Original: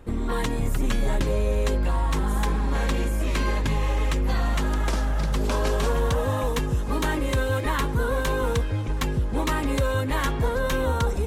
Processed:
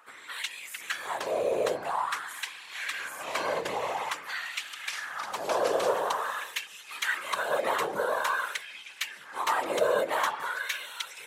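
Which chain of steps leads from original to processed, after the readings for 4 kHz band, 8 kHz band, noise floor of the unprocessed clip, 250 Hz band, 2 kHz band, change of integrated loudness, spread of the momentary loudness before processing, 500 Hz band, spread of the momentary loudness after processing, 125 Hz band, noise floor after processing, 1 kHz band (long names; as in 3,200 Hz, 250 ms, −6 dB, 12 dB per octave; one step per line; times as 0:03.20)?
−1.0 dB, −2.5 dB, −27 dBFS, −17.0 dB, 0.0 dB, −5.5 dB, 2 LU, −2.5 dB, 9 LU, −31.0 dB, −48 dBFS, −0.5 dB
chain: random phases in short frames
auto-filter high-pass sine 0.48 Hz 520–2,600 Hz
level −3 dB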